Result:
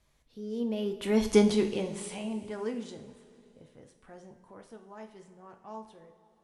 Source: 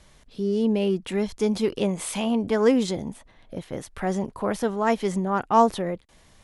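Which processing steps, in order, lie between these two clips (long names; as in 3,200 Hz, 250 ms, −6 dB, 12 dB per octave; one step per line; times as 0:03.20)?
source passing by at 0:01.32, 17 m/s, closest 1.9 metres
coupled-rooms reverb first 0.43 s, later 3 s, from −15 dB, DRR 4 dB
level +4.5 dB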